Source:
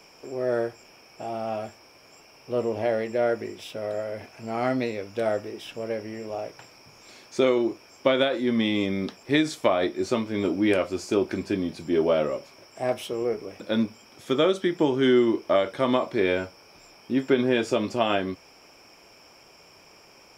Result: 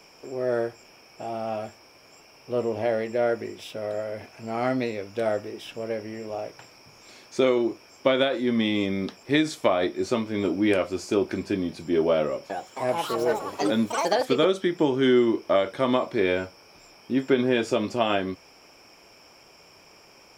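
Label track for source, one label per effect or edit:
12.230000	14.830000	delay with pitch and tempo change per echo 268 ms, each echo +5 semitones, echoes 3

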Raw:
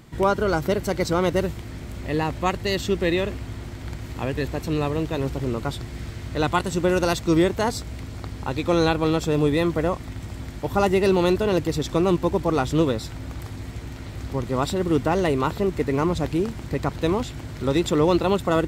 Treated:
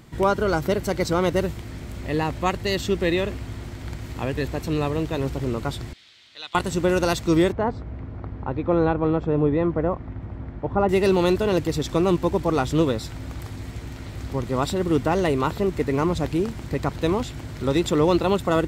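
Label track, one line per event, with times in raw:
5.930000	6.550000	resonant band-pass 3,600 Hz, Q 2.5
7.520000	10.890000	low-pass filter 1,300 Hz

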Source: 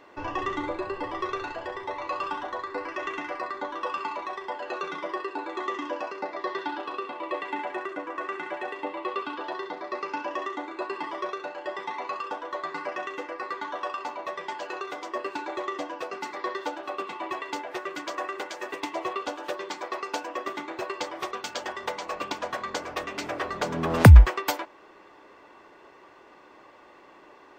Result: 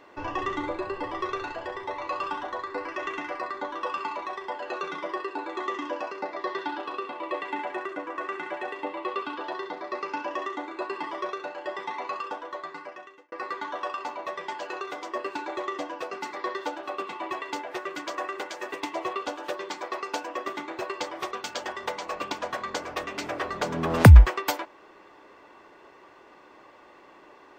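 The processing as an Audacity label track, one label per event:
12.200000	13.320000	fade out

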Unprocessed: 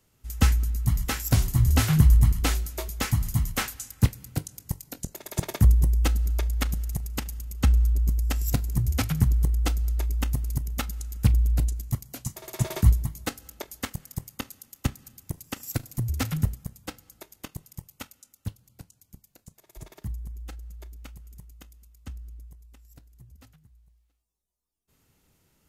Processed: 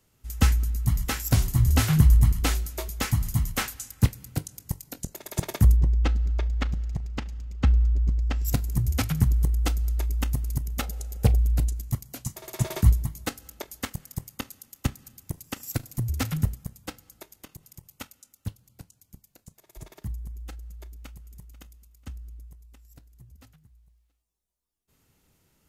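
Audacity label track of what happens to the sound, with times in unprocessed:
5.760000	8.450000	high-frequency loss of the air 160 metres
10.810000	11.380000	flat-topped bell 560 Hz +12 dB 1.2 octaves
17.320000	17.910000	downward compressor 3 to 1, threshold −41 dBFS
20.840000	21.260000	delay throw 490 ms, feedback 30%, level −16 dB

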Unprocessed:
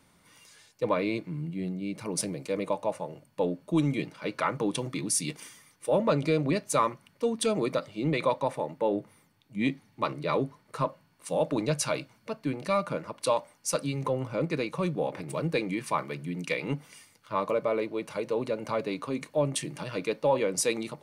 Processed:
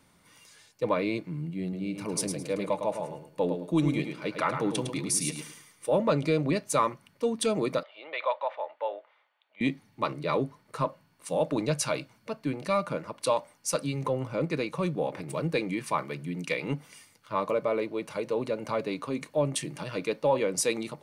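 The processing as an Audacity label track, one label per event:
1.620000	5.870000	repeating echo 107 ms, feedback 25%, level −7 dB
7.830000	9.610000	Chebyshev band-pass filter 600–3,400 Hz, order 3

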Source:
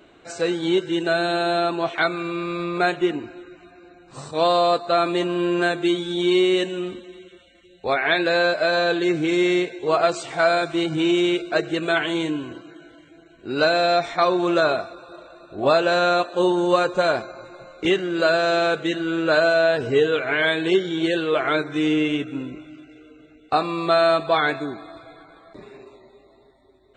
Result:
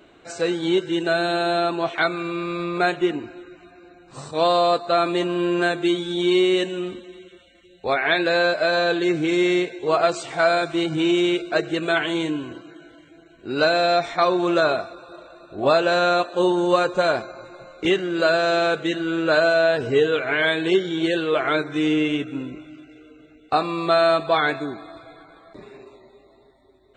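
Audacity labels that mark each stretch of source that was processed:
1.060000	1.460000	surface crackle 210 per second −46 dBFS

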